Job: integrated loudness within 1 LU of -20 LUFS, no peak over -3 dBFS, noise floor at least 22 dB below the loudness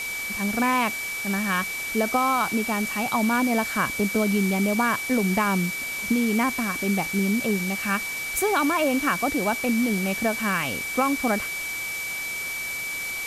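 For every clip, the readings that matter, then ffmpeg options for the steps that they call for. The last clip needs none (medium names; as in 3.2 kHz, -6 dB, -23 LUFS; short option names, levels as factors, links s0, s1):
steady tone 2.3 kHz; tone level -29 dBFS; noise floor -31 dBFS; noise floor target -46 dBFS; loudness -24.0 LUFS; peak level -9.0 dBFS; loudness target -20.0 LUFS
-> -af "bandreject=f=2300:w=30"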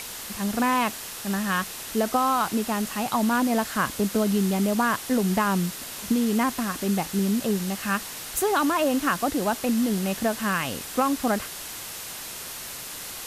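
steady tone not found; noise floor -37 dBFS; noise floor target -48 dBFS
-> -af "afftdn=nr=11:nf=-37"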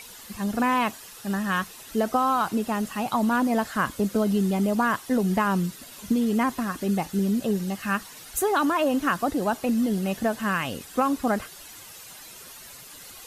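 noise floor -45 dBFS; noise floor target -48 dBFS
-> -af "afftdn=nr=6:nf=-45"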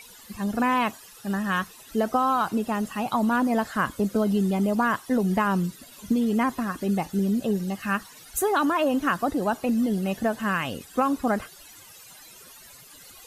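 noise floor -48 dBFS; loudness -25.5 LUFS; peak level -9.5 dBFS; loudness target -20.0 LUFS
-> -af "volume=1.88"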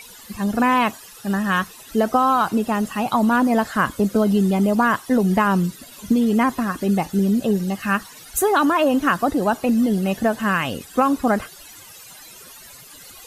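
loudness -20.0 LUFS; peak level -4.0 dBFS; noise floor -43 dBFS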